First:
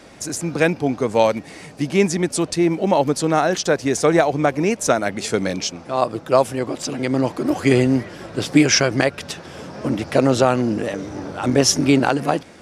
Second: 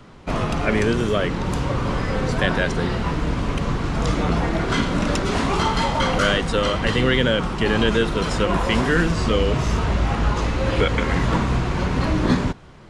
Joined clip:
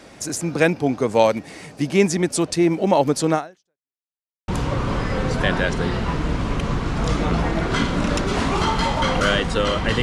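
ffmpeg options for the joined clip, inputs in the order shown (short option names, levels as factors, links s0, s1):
-filter_complex "[0:a]apad=whole_dur=10.02,atrim=end=10.02,asplit=2[s0][s1];[s0]atrim=end=3.96,asetpts=PTS-STARTPTS,afade=t=out:st=3.34:d=0.62:c=exp[s2];[s1]atrim=start=3.96:end=4.48,asetpts=PTS-STARTPTS,volume=0[s3];[1:a]atrim=start=1.46:end=7,asetpts=PTS-STARTPTS,afade=t=in:d=0.004:c=hsin[s4];[s2][s3][s4]concat=n=3:v=0:a=1"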